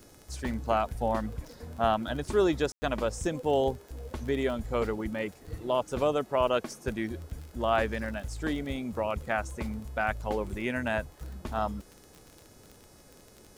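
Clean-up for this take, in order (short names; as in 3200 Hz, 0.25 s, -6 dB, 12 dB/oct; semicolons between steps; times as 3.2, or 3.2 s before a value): de-click; de-hum 423.7 Hz, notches 36; room tone fill 2.72–2.82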